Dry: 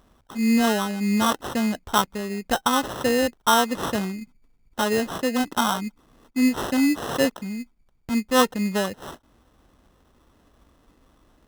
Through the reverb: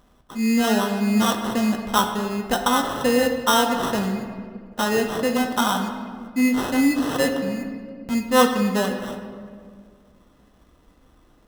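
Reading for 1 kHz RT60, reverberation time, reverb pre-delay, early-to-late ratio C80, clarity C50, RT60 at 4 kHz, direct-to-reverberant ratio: 1.7 s, 2.0 s, 4 ms, 7.5 dB, 6.0 dB, 1.1 s, 3.0 dB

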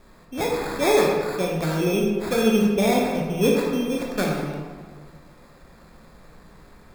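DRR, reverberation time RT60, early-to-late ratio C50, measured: -2.0 dB, 1.7 s, 1.0 dB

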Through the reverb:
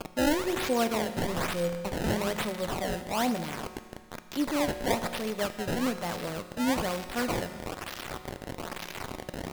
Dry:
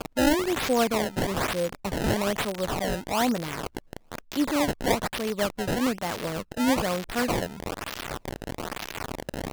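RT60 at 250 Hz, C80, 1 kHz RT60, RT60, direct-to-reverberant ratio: 1.8 s, 11.5 dB, 1.8 s, 1.8 s, 9.0 dB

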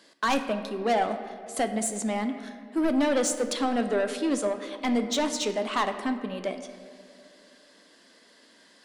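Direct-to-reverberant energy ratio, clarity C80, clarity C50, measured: 7.0 dB, 10.5 dB, 9.5 dB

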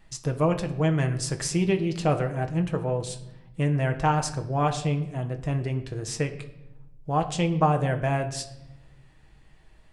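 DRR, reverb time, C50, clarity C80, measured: 5.0 dB, 0.85 s, 12.5 dB, 14.5 dB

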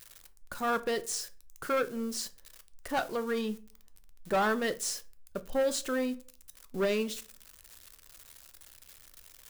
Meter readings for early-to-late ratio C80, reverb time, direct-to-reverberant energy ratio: 24.5 dB, 0.45 s, 11.5 dB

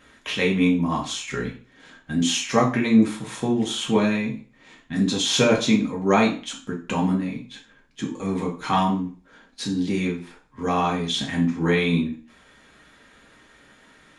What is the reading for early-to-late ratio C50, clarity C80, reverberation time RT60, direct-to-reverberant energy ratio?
9.5 dB, 14.5 dB, 0.40 s, -2.5 dB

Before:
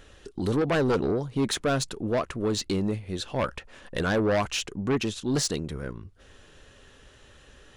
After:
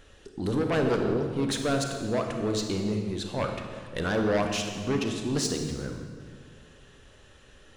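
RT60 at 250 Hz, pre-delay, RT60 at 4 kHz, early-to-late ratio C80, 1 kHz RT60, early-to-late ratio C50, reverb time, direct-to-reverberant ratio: 2.1 s, 30 ms, 1.5 s, 6.0 dB, 1.7 s, 4.5 dB, 1.9 s, 3.5 dB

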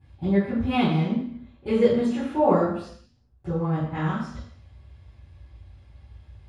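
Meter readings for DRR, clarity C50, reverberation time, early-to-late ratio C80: -15.5 dB, 2.5 dB, 0.65 s, 5.5 dB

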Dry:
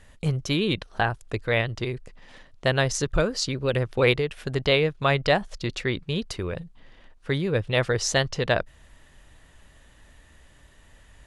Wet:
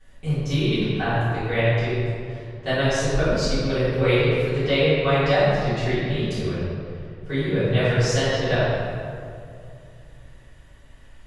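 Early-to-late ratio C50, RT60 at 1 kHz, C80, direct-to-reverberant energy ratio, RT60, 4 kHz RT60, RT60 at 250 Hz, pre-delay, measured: -3.5 dB, 2.2 s, -1.5 dB, -17.5 dB, 2.4 s, 1.3 s, 2.7 s, 3 ms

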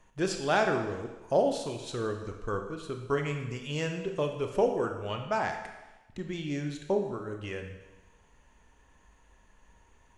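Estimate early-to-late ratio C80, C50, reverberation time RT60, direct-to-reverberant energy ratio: 8.5 dB, 6.5 dB, 1.1 s, 4.5 dB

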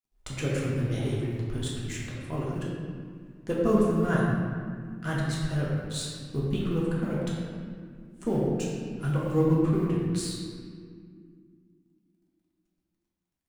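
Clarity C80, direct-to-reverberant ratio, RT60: 0.5 dB, -6.0 dB, 2.1 s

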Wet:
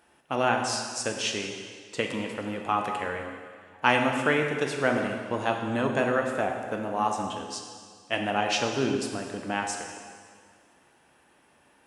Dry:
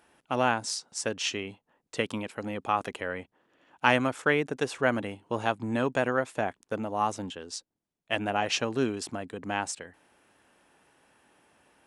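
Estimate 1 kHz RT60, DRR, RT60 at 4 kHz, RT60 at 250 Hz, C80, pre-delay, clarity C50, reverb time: 1.9 s, 2.0 dB, 1.8 s, 1.9 s, 5.5 dB, 4 ms, 4.0 dB, 1.9 s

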